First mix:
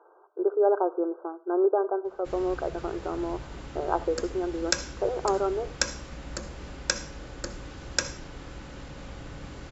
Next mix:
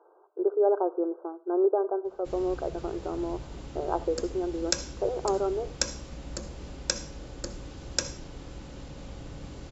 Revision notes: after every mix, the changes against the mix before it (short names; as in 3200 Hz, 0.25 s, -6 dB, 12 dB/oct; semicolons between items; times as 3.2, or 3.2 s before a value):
master: add bell 1600 Hz -7.5 dB 1.5 oct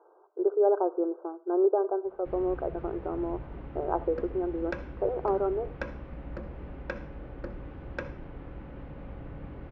master: add LPF 2200 Hz 24 dB/oct